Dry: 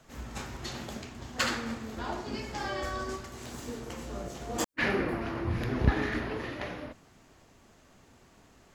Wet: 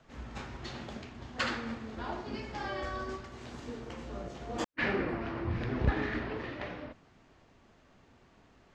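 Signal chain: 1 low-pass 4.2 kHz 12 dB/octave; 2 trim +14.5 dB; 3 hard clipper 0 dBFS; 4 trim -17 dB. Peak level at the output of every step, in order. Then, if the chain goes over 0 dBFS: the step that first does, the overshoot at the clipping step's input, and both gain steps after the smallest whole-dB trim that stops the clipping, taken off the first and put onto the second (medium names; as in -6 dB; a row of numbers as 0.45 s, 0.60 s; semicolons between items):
-8.5 dBFS, +6.0 dBFS, 0.0 dBFS, -17.0 dBFS; step 2, 6.0 dB; step 2 +8.5 dB, step 4 -11 dB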